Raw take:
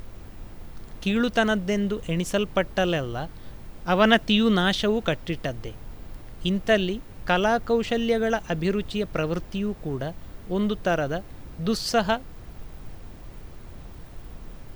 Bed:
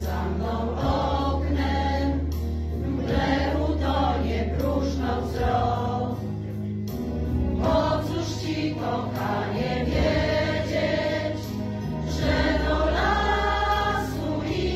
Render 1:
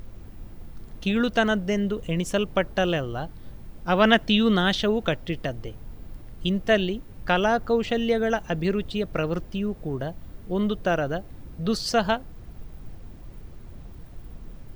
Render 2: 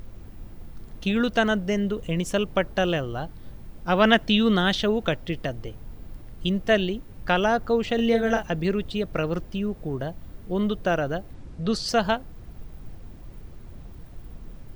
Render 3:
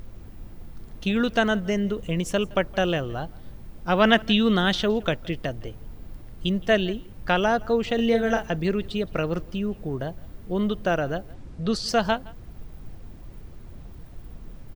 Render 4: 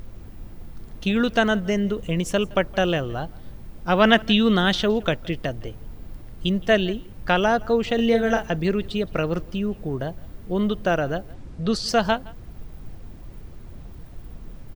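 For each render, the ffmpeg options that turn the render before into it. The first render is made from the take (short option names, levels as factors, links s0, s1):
-af "afftdn=nr=6:nf=-43"
-filter_complex "[0:a]asettb=1/sr,asplit=3[s0][s1][s2];[s0]atrim=end=7.954[s3];[s1]atrim=start=7.95:end=8.47,asetpts=PTS-STARTPTS,afade=t=in:d=0.004:c=qsin,afade=t=out:st=0.516:d=0.004:c=qsin,asplit=2[s4][s5];[s5]adelay=35,volume=0.562[s6];[s4][s6]amix=inputs=2:normalize=0,atrim=end_sample=22932[s7];[s2]atrim=start=8.466[s8];[s3][s7]acrossfade=d=0.004:c1=hsin:c2=qsin[s9];[s9][s8]acrossfade=d=0.004:c1=qsin:c2=hsin,asplit=3[s10][s11][s12];[s10]afade=t=out:st=11.33:d=0.02[s13];[s11]lowpass=f=10000:w=0.5412,lowpass=f=10000:w=1.3066,afade=t=in:st=11.33:d=0.02,afade=t=out:st=11.87:d=0.02[s14];[s12]afade=t=in:st=11.87:d=0.02[s15];[s13][s14][s15]amix=inputs=3:normalize=0"
-af "aecho=1:1:167:0.0668"
-af "volume=1.26"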